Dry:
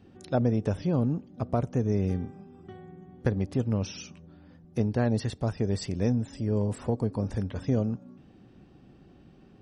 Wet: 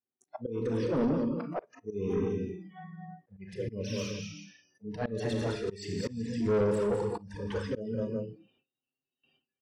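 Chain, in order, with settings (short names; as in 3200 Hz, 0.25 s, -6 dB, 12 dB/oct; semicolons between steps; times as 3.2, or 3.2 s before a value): 0.68–1.71 Chebyshev high-pass 160 Hz, order 3; auto swell 0.101 s; dynamic EQ 460 Hz, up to +6 dB, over -46 dBFS, Q 3.2; envelope flanger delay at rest 8.7 ms, full sweep at -22 dBFS; high shelf 4100 Hz +5.5 dB; tapped delay 0.208/0.242/0.376 s -8.5/-16.5/-14.5 dB; Schroeder reverb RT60 1.1 s, combs from 27 ms, DRR 6 dB; auto swell 0.36 s; overdrive pedal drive 23 dB, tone 1400 Hz, clips at -15.5 dBFS; spectral noise reduction 26 dB; gate with hold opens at -57 dBFS; gain -3.5 dB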